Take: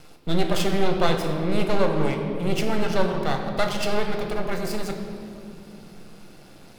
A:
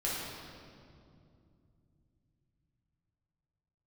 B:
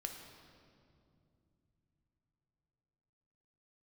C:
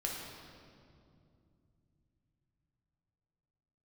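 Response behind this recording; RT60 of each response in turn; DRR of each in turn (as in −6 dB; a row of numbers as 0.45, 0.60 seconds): B; 2.5, 2.7, 2.5 seconds; −7.0, 3.0, −2.5 decibels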